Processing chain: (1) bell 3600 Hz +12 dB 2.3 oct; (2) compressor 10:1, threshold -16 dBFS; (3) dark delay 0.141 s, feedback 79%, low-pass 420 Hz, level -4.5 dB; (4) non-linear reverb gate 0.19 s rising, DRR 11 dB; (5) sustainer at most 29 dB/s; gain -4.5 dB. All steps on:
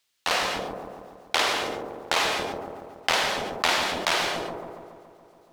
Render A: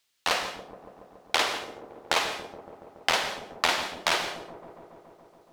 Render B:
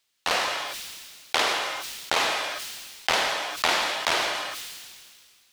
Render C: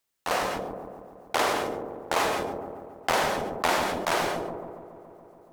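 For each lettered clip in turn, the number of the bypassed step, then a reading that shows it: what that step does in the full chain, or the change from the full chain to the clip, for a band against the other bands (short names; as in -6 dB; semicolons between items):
5, crest factor change +3.0 dB; 3, momentary loudness spread change -3 LU; 1, 4 kHz band -9.0 dB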